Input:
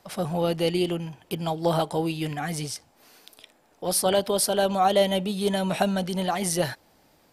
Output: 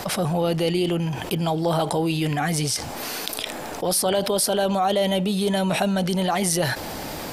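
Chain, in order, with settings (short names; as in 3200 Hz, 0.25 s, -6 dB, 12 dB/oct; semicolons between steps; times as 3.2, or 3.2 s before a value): fast leveller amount 70%; gain -2.5 dB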